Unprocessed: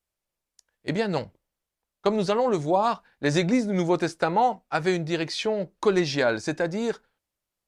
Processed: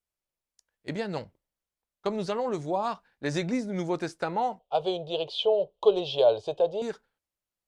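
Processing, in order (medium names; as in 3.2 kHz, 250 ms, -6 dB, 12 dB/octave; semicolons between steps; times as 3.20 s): 4.59–6.82 s: FFT filter 110 Hz 0 dB, 290 Hz -16 dB, 420 Hz +9 dB, 640 Hz +11 dB, 1.1 kHz 0 dB, 1.9 kHz -29 dB, 3.1 kHz +13 dB, 5.5 kHz -12 dB; trim -6.5 dB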